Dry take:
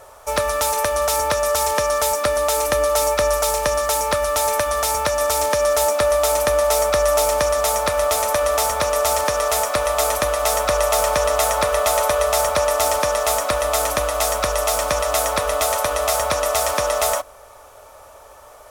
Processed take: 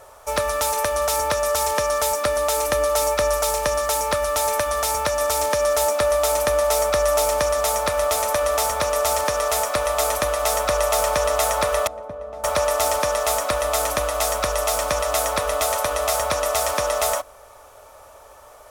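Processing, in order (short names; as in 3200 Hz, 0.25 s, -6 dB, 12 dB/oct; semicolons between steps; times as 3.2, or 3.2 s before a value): 11.87–12.44 band-pass 180 Hz, Q 1.3; gain -2 dB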